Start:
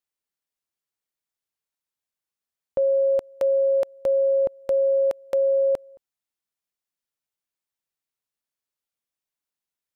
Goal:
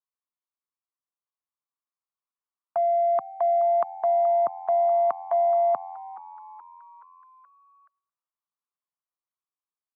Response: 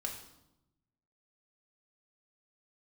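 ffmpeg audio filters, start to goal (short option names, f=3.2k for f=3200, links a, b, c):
-filter_complex "[0:a]agate=range=-7dB:threshold=-35dB:ratio=16:detection=peak,highpass=f=97:w=0.5412,highpass=f=97:w=1.3066,acrossover=split=140|210|630[a][b][c][d];[c]asoftclip=type=tanh:threshold=-37dB[e];[d]dynaudnorm=f=930:g=5:m=7dB[f];[a][b][e][f]amix=inputs=4:normalize=0,lowpass=f=880:t=q:w=4.9,asetrate=55563,aresample=44100,atempo=0.793701,asplit=6[g][h][i][j][k][l];[h]adelay=425,afreqshift=87,volume=-19dB[m];[i]adelay=850,afreqshift=174,volume=-23.9dB[n];[j]adelay=1275,afreqshift=261,volume=-28.8dB[o];[k]adelay=1700,afreqshift=348,volume=-33.6dB[p];[l]adelay=2125,afreqshift=435,volume=-38.5dB[q];[g][m][n][o][p][q]amix=inputs=6:normalize=0,volume=-4.5dB"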